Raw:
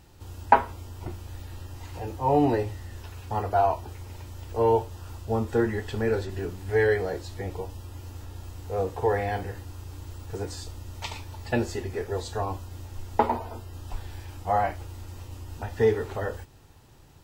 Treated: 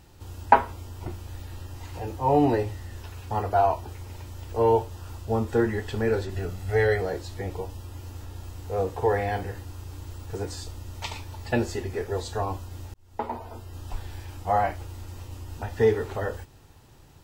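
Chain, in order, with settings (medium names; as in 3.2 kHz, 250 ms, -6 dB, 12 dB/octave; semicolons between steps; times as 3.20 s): 6.35–7.01 s: comb 1.5 ms, depth 49%; 12.94–13.79 s: fade in; trim +1 dB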